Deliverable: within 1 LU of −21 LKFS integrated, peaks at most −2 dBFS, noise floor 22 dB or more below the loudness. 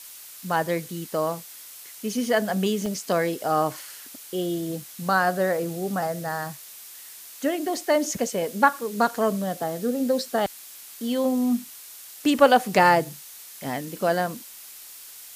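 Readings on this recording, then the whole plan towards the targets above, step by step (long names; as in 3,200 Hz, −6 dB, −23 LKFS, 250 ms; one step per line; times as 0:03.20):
number of dropouts 2; longest dropout 2.3 ms; background noise floor −44 dBFS; target noise floor −47 dBFS; integrated loudness −24.5 LKFS; sample peak −4.5 dBFS; target loudness −21.0 LKFS
→ repair the gap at 0:02.86/0:12.79, 2.3 ms
noise reduction from a noise print 6 dB
level +3.5 dB
brickwall limiter −2 dBFS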